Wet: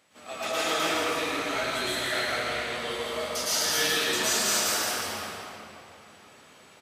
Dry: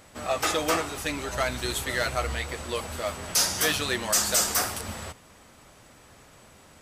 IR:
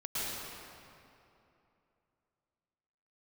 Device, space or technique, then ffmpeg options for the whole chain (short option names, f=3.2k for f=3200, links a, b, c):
stadium PA: -filter_complex "[0:a]highpass=170,equalizer=f=3k:t=o:w=1.7:g=6,aecho=1:1:163.3|288.6:0.501|0.251[a];[1:a]atrim=start_sample=2205[b];[a][b]afir=irnorm=-1:irlink=0,asettb=1/sr,asplit=3[c][d][e];[c]atrim=end=2.784[f];[d]atrim=start=2.78:end=3.96,asetpts=PTS-STARTPTS,afade=t=in:d=0.004:c=qsin,afade=t=out:st=1.176:d=0.004:c=qsin,bandreject=f=2.5k:w=12[g];[e]atrim=start=3.956[h];[f][g]acrossfade=d=0.004:c1=hsin:c2=qsin[i];[i][h]acrossfade=d=0.004:c1=qsin:c2=hsin,volume=-8.5dB"